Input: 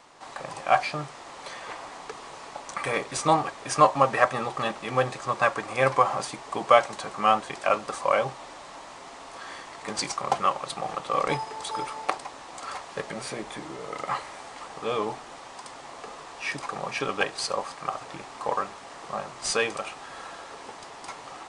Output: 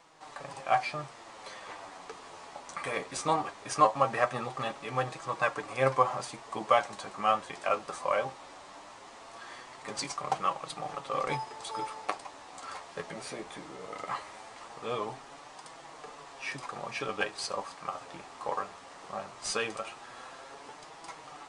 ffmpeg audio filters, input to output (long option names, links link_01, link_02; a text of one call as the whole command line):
ffmpeg -i in.wav -af "flanger=delay=6:depth=6.2:regen=42:speed=0.19:shape=triangular,volume=-2dB" out.wav